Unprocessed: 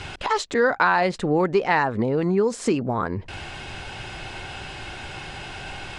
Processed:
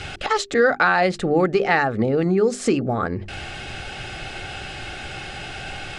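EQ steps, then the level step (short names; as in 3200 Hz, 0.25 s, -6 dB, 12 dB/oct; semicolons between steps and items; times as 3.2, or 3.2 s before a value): Butterworth band-stop 980 Hz, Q 4.5; notches 50/100/150/200/250/300/350/400 Hz; +3.0 dB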